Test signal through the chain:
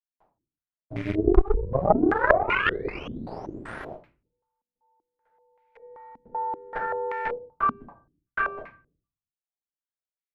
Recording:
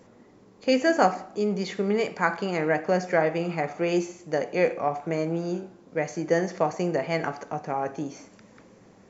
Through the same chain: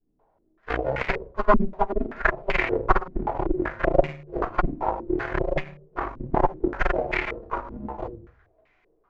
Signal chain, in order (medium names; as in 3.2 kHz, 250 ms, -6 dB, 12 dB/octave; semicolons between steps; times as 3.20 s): formants flattened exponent 0.3; waveshaping leveller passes 2; ring modulator 200 Hz; compression 2:1, threshold -22 dBFS; simulated room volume 250 m³, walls furnished, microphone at 5 m; Chebyshev shaper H 2 -6 dB, 3 -12 dB, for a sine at 5 dBFS; step-sequenced low-pass 5.2 Hz 240–2200 Hz; trim -6 dB